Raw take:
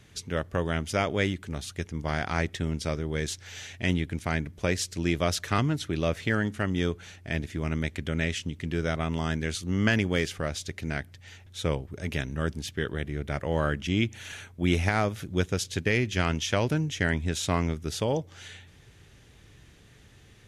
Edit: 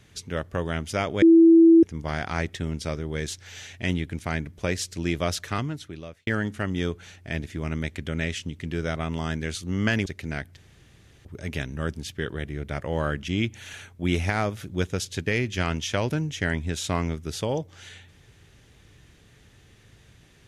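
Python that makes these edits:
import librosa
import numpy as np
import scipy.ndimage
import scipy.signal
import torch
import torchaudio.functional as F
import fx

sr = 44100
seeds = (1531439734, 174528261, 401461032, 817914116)

y = fx.edit(x, sr, fx.bleep(start_s=1.22, length_s=0.61, hz=330.0, db=-10.0),
    fx.fade_out_span(start_s=5.31, length_s=0.96),
    fx.cut(start_s=10.06, length_s=0.59),
    fx.room_tone_fill(start_s=11.16, length_s=0.68), tone=tone)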